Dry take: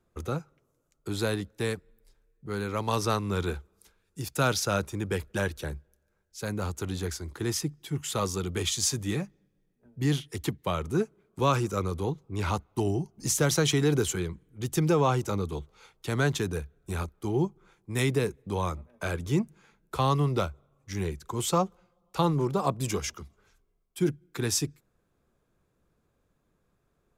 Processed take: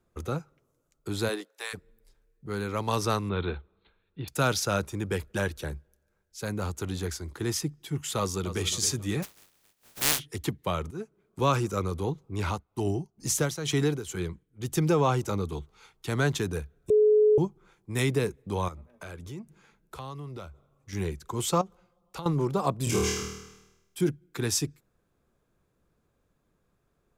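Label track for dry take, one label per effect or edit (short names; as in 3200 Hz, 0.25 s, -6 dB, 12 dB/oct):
1.280000	1.730000	HPF 220 Hz -> 910 Hz 24 dB/oct
3.290000	4.280000	Chebyshev low-pass 4200 Hz, order 8
8.180000	8.640000	echo throw 0.27 s, feedback 40%, level -12 dB
9.220000	10.180000	spectral contrast lowered exponent 0.14
10.910000	11.410000	fade in, from -16 dB
12.440000	14.750000	tremolo 2.2 Hz, depth 74%
15.530000	16.090000	bell 550 Hz -11.5 dB 0.25 oct
16.900000	17.380000	bleep 425 Hz -16.5 dBFS
18.680000	20.930000	compressor 3:1, threshold -41 dBFS
21.610000	22.260000	compressor 5:1, threshold -35 dBFS
22.840000	24.010000	flutter echo walls apart 4.4 m, dies away in 0.94 s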